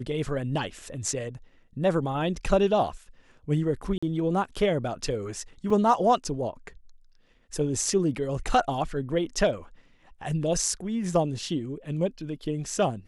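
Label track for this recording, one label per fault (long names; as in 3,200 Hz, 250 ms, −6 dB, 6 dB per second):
3.980000	4.030000	drop-out 45 ms
5.700000	5.700000	drop-out 3.6 ms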